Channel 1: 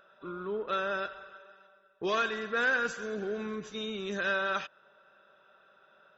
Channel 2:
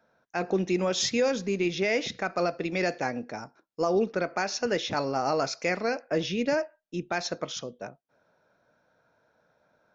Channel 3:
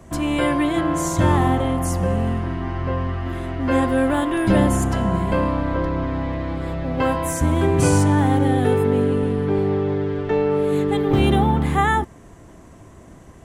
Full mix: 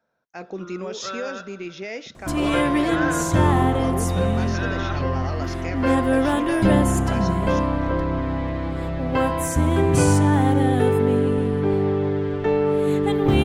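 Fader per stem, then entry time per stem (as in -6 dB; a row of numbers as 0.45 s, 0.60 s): -1.0 dB, -6.5 dB, -0.5 dB; 0.35 s, 0.00 s, 2.15 s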